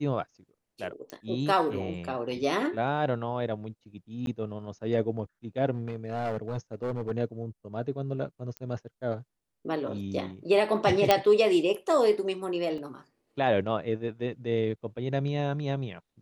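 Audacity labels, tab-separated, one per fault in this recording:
1.100000	1.100000	pop -26 dBFS
4.260000	4.270000	gap 12 ms
5.710000	7.120000	clipped -26.5 dBFS
8.570000	8.570000	pop -23 dBFS
11.110000	11.110000	pop -5 dBFS
12.780000	12.780000	gap 2.7 ms

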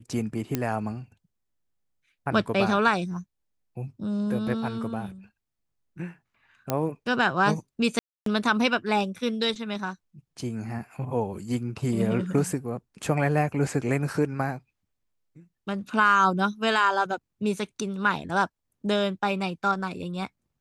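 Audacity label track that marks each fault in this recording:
0.550000	0.550000	pop -11 dBFS
6.700000	6.700000	pop -10 dBFS
7.990000	8.260000	gap 0.273 s

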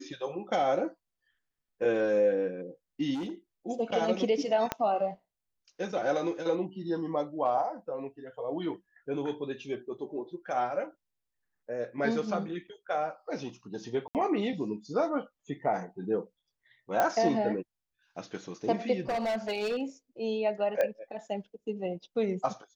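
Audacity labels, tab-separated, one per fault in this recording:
3.140000	3.300000	clipped -31.5 dBFS
4.720000	4.720000	pop -13 dBFS
14.080000	14.150000	gap 68 ms
17.000000	17.000000	pop -13 dBFS
19.090000	19.820000	clipped -27 dBFS
20.810000	20.810000	pop -17 dBFS

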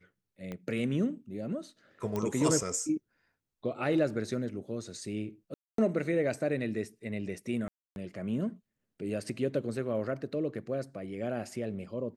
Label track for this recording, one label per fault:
0.520000	0.520000	pop -26 dBFS
2.160000	2.160000	pop -20 dBFS
5.540000	5.780000	gap 0.243 s
7.680000	7.960000	gap 0.281 s

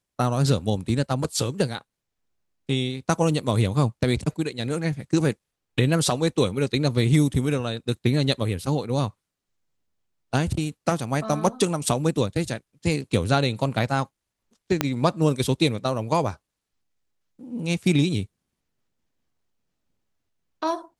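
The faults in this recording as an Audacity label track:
14.810000	14.810000	pop -5 dBFS

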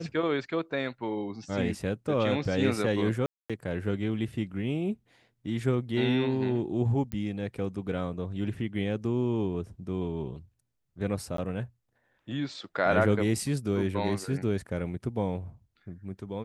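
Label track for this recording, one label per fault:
3.260000	3.500000	gap 0.236 s
7.120000	7.120000	pop -21 dBFS
11.370000	11.380000	gap 13 ms

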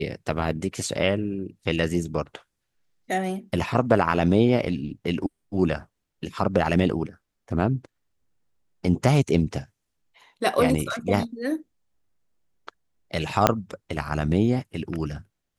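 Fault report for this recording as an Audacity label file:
13.470000	13.470000	pop -1 dBFS

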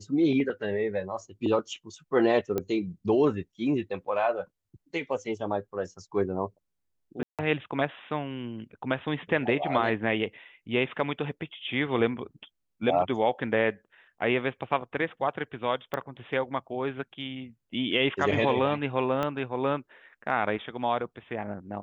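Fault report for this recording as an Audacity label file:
2.580000	2.580000	pop -16 dBFS
7.230000	7.390000	gap 0.157 s
15.940000	15.940000	pop -18 dBFS
19.230000	19.230000	pop -17 dBFS

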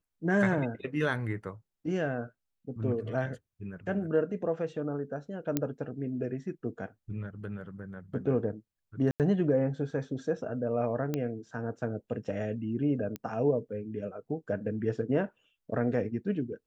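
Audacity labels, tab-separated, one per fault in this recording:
5.570000	5.570000	pop -13 dBFS
9.110000	9.200000	gap 88 ms
11.140000	11.140000	pop -18 dBFS
13.160000	13.160000	pop -22 dBFS

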